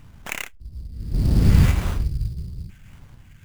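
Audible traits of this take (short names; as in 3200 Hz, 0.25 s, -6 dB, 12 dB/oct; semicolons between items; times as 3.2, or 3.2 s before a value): phasing stages 4, 1.7 Hz, lowest notch 800–2500 Hz; aliases and images of a low sample rate 4800 Hz, jitter 20%; random-step tremolo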